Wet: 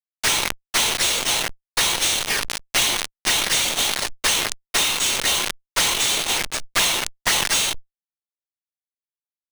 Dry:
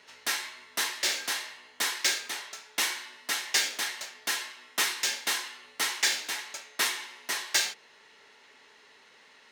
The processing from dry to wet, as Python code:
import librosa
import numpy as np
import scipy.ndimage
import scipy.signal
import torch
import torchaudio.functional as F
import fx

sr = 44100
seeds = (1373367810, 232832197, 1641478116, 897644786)

y = fx.phase_scramble(x, sr, seeds[0], window_ms=100)
y = fx.peak_eq(y, sr, hz=11000.0, db=3.0, octaves=2.2)
y = fx.env_flanger(y, sr, rest_ms=10.9, full_db=-28.0)
y = fx.quant_dither(y, sr, seeds[1], bits=6, dither='none')
y = scipy.signal.sosfilt(scipy.signal.butter(2, 600.0, 'highpass', fs=sr, output='sos'), y)
y = fx.fuzz(y, sr, gain_db=50.0, gate_db=-49.0)
y = np.repeat(scipy.signal.resample_poly(y, 1, 3), 3)[:len(y)]
y = fx.transient(y, sr, attack_db=7, sustain_db=-9)
y = fx.tube_stage(y, sr, drive_db=11.0, bias=0.75)
y = fx.sustainer(y, sr, db_per_s=34.0)
y = y * 10.0 ** (-1.0 / 20.0)